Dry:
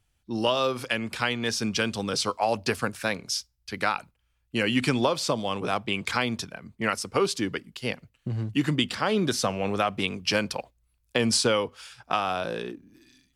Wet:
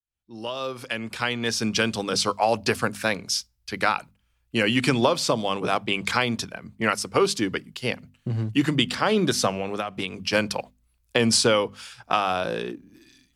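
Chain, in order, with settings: fade-in on the opening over 1.75 s; hum notches 50/100/150/200/250 Hz; 9.49–10.33 s: compression 12:1, threshold -28 dBFS, peak gain reduction 9.5 dB; trim +3.5 dB

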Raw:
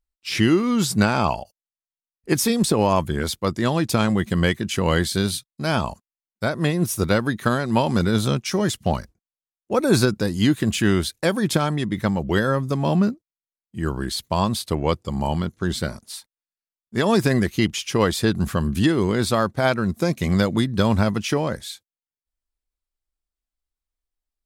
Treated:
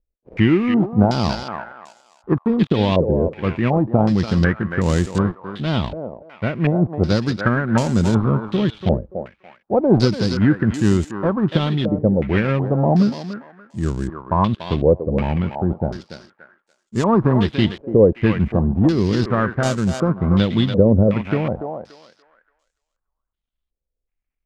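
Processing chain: dead-time distortion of 0.16 ms; bass shelf 450 Hz +11.5 dB; on a send: thinning echo 288 ms, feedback 32%, high-pass 570 Hz, level -5 dB; on the sum: step-sequenced low-pass 2.7 Hz 520–7300 Hz; trim -6 dB

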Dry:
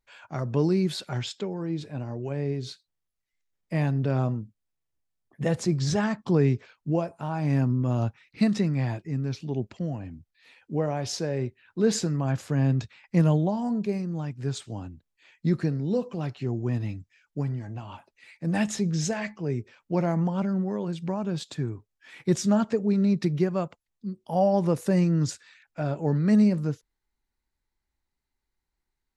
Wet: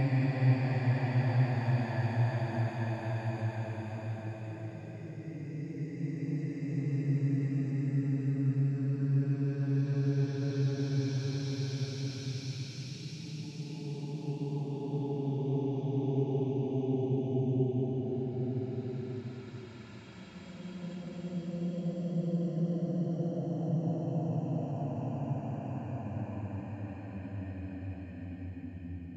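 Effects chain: wow and flutter 20 cents; Paulstretch 22×, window 0.25 s, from 8.80 s; trim -3 dB

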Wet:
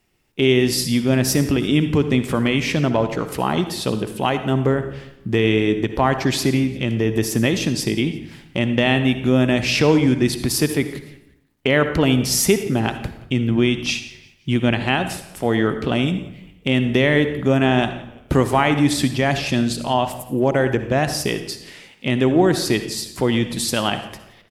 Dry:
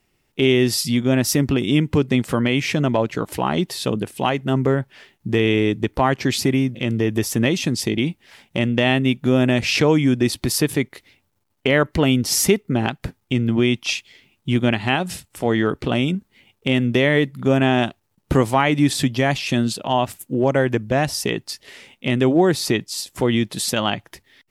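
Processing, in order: frequency-shifting echo 173 ms, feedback 41%, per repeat -71 Hz, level -22 dB; on a send at -9.5 dB: reverberation RT60 0.80 s, pre-delay 54 ms

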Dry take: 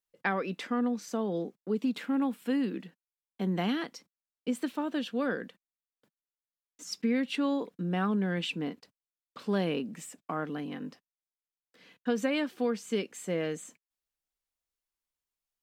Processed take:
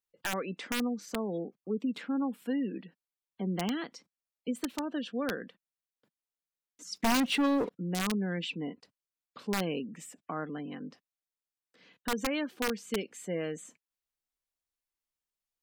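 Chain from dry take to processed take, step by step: spectral gate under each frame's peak -30 dB strong; 6.96–7.70 s: waveshaping leveller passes 3; integer overflow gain 20.5 dB; trim -2.5 dB

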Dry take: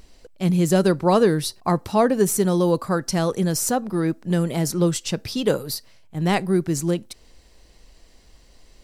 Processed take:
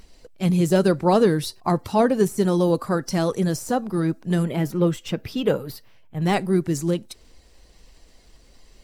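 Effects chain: coarse spectral quantiser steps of 15 dB; de-esser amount 50%; 4.45–6.22 s: high-order bell 6.6 kHz -9.5 dB

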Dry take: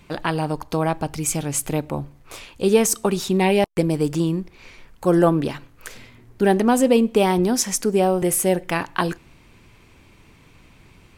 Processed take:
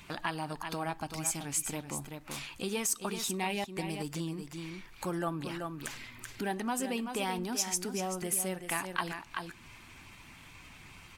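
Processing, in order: coarse spectral quantiser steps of 15 dB; peaking EQ 490 Hz -9 dB 0.91 oct; delay 382 ms -9.5 dB; compression 2:1, threshold -41 dBFS, peak gain reduction 14 dB; bass shelf 350 Hz -9.5 dB; trim +3.5 dB

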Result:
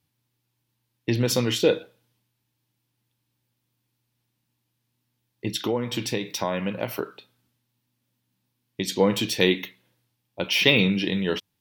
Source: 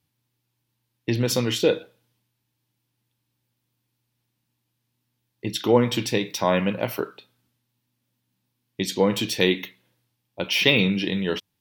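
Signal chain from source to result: 5.53–8.88 s: compression 4:1, threshold -23 dBFS, peak gain reduction 10.5 dB

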